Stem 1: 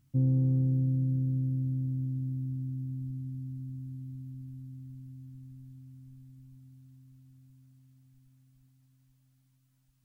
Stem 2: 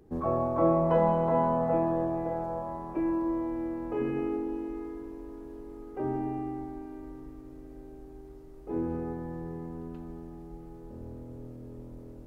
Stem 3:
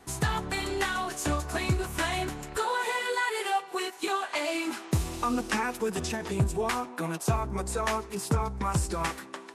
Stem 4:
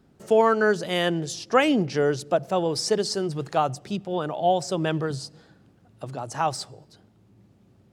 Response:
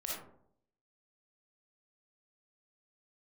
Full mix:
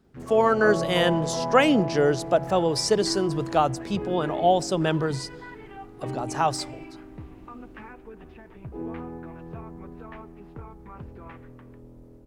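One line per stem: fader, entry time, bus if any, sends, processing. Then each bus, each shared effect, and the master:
-14.5 dB, 0.00 s, no send, compressor, threshold -31 dBFS, peak gain reduction 8.5 dB; noise-modulated delay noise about 1400 Hz, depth 0.21 ms
-8.0 dB, 0.05 s, no send, dry
-20.0 dB, 2.25 s, no send, LPF 2600 Hz 24 dB/oct
-3.5 dB, 0.00 s, no send, dry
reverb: off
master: AGC gain up to 5 dB

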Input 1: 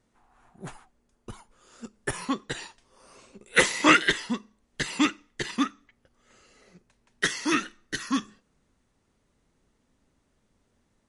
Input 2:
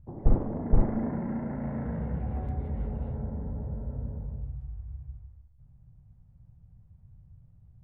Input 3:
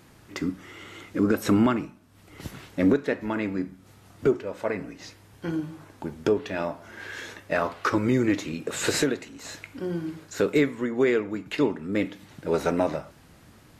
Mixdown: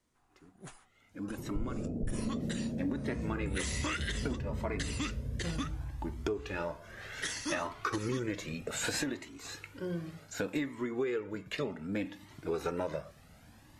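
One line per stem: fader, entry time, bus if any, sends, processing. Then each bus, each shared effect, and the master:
-9.5 dB, 0.00 s, bus A, no send, notch 880 Hz, Q 12
-2.5 dB, 1.30 s, bus A, no send, steep low-pass 600 Hz 36 dB/oct
0.89 s -24 dB -> 1.16 s -11.5 dB -> 2.66 s -11.5 dB -> 3.05 s -0.5 dB, 0.00 s, no bus, no send, cascading flanger rising 0.65 Hz
bus A: 0.0 dB, high shelf 3800 Hz +8 dB; limiter -22.5 dBFS, peak gain reduction 11.5 dB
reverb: off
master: compressor 6:1, threshold -30 dBFS, peak gain reduction 9 dB

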